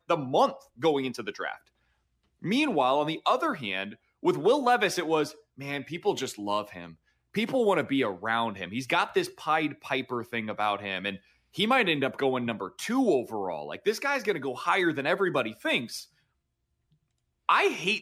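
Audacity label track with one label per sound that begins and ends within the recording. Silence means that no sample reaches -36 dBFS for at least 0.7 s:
2.440000	16.020000	sound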